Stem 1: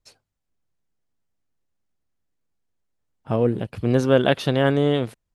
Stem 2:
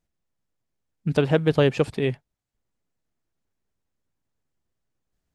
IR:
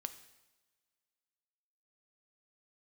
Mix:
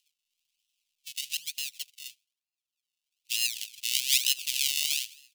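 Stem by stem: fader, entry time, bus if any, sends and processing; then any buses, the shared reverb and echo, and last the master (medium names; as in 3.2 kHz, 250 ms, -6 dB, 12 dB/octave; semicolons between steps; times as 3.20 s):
+2.0 dB, 0.00 s, send -9.5 dB, echo send -22 dB, gate -40 dBFS, range -34 dB
-3.0 dB, 0.00 s, send -22 dB, no echo send, auto duck -16 dB, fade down 1.85 s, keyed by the first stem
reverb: on, pre-delay 3 ms
echo: delay 231 ms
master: decimation with a swept rate 37×, swing 100% 1.1 Hz; elliptic high-pass 2.7 kHz, stop band 50 dB; upward compressor, threshold -58 dBFS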